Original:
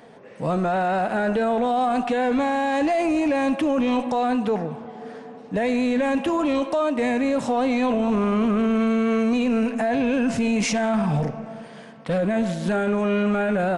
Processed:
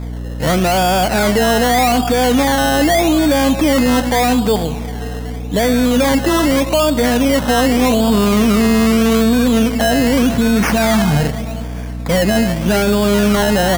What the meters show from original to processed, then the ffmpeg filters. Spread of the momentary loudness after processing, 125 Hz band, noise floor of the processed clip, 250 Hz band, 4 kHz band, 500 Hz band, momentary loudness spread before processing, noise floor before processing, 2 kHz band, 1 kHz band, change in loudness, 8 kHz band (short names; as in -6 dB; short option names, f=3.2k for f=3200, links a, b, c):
8 LU, +11.0 dB, -24 dBFS, +8.0 dB, +16.5 dB, +7.5 dB, 8 LU, -42 dBFS, +10.0 dB, +7.0 dB, +8.5 dB, +16.5 dB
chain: -af "acrusher=samples=15:mix=1:aa=0.000001:lfo=1:lforange=9:lforate=0.83,aeval=exprs='val(0)+0.0282*(sin(2*PI*60*n/s)+sin(2*PI*2*60*n/s)/2+sin(2*PI*3*60*n/s)/3+sin(2*PI*4*60*n/s)/4+sin(2*PI*5*60*n/s)/5)':c=same,volume=8dB"